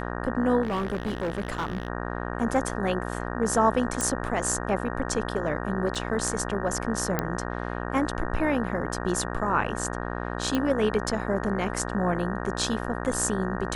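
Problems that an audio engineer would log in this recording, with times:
buzz 60 Hz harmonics 31 -32 dBFS
0.62–1.88 s: clipped -24.5 dBFS
4.01 s: pop -12 dBFS
5.95–5.96 s: dropout 5.4 ms
7.19 s: pop -11 dBFS
10.55 s: pop -13 dBFS

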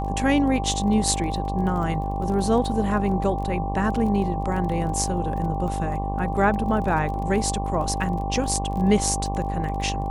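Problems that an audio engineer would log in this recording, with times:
buzz 50 Hz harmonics 23 -28 dBFS
crackle 21 per s -32 dBFS
whine 790 Hz -29 dBFS

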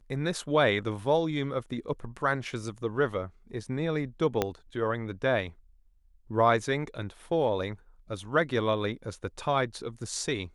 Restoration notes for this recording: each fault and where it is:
4.42 s: pop -11 dBFS

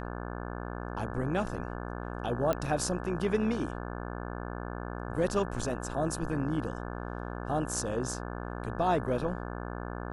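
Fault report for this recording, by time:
buzz 60 Hz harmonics 29 -38 dBFS
2.53 s: pop -16 dBFS

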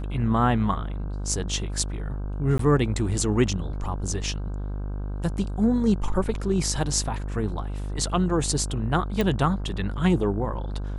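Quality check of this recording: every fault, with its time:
buzz 50 Hz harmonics 32 -30 dBFS
2.58–2.59 s: dropout 13 ms
9.21 s: pop

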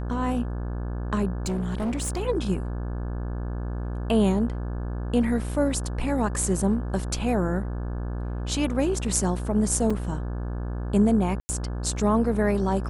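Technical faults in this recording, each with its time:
buzz 60 Hz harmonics 29 -30 dBFS
1.46–2.20 s: clipped -23.5 dBFS
9.90 s: dropout 4.5 ms
11.40–11.49 s: dropout 90 ms

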